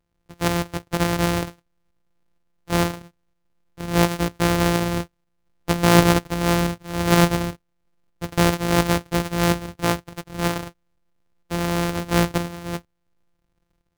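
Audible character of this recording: a buzz of ramps at a fixed pitch in blocks of 256 samples; tremolo saw up 2.1 Hz, depth 40%

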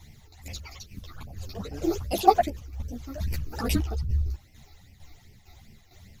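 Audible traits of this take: a quantiser's noise floor 12-bit, dither triangular; phasing stages 12, 2.5 Hz, lowest notch 160–1300 Hz; tremolo saw down 2.2 Hz, depth 60%; a shimmering, thickened sound

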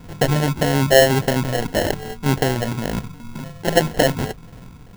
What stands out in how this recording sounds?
phasing stages 8, 1.8 Hz, lowest notch 380–1100 Hz; aliases and images of a low sample rate 1.2 kHz, jitter 0%

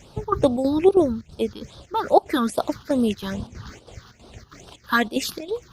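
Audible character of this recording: chopped level 3.1 Hz, depth 65%, duty 75%; phasing stages 6, 2.4 Hz, lowest notch 580–2000 Hz; Opus

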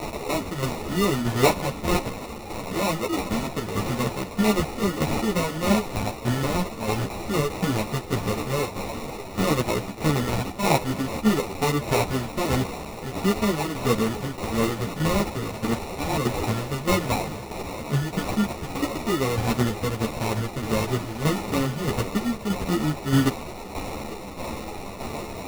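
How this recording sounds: a quantiser's noise floor 6-bit, dither triangular; tremolo saw down 1.6 Hz, depth 60%; aliases and images of a low sample rate 1.6 kHz, jitter 0%; a shimmering, thickened sound

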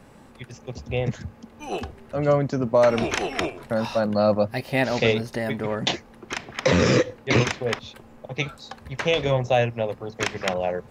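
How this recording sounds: noise floor -49 dBFS; spectral tilt -4.5 dB/octave

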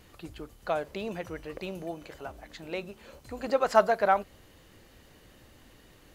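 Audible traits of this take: noise floor -57 dBFS; spectral tilt -3.5 dB/octave

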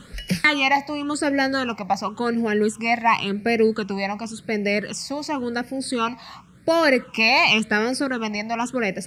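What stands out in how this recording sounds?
phasing stages 8, 0.92 Hz, lowest notch 420–1100 Hz

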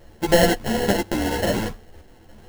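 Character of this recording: a buzz of ramps at a fixed pitch in blocks of 8 samples; random-step tremolo; aliases and images of a low sample rate 1.2 kHz, jitter 0%; a shimmering, thickened sound

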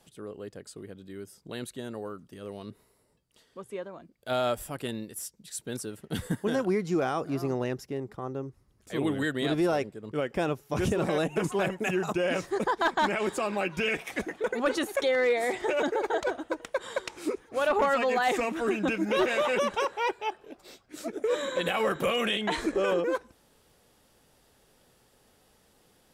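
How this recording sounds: noise floor -65 dBFS; spectral tilt -3.5 dB/octave

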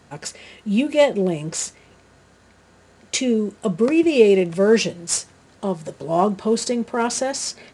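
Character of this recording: noise floor -53 dBFS; spectral tilt -4.0 dB/octave

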